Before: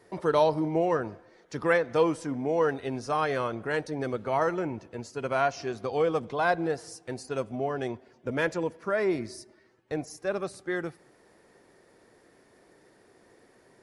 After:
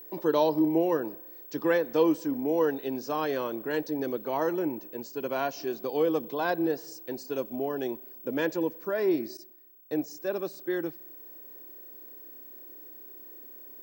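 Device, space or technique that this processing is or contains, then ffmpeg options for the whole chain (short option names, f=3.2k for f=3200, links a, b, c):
old television with a line whistle: -filter_complex "[0:a]highpass=f=170:w=0.5412,highpass=f=170:w=1.3066,equalizer=f=200:t=q:w=4:g=-4,equalizer=f=310:t=q:w=4:g=6,equalizer=f=710:t=q:w=4:g=-5,equalizer=f=1.3k:t=q:w=4:g=-9,equalizer=f=2.1k:t=q:w=4:g=-8,lowpass=f=7.3k:w=0.5412,lowpass=f=7.3k:w=1.3066,aeval=exprs='val(0)+0.00631*sin(2*PI*15734*n/s)':c=same,asettb=1/sr,asplit=3[a][b][c];[a]atrim=end=9.374[d];[b]atrim=start=9.37:end=10.04,asetpts=PTS-STARTPTS,afade=t=in:d=0.004:c=qsin,afade=t=out:st=0.666:d=0.004:c=qsin,agate=range=-33dB:threshold=-40dB:ratio=3:detection=peak[e];[c]atrim=start=10.036[f];[d][e]acrossfade=d=0.004:c1=hsin:c2=qsin[g];[g][f]acrossfade=d=0.004:c1=qsin:c2=hsin"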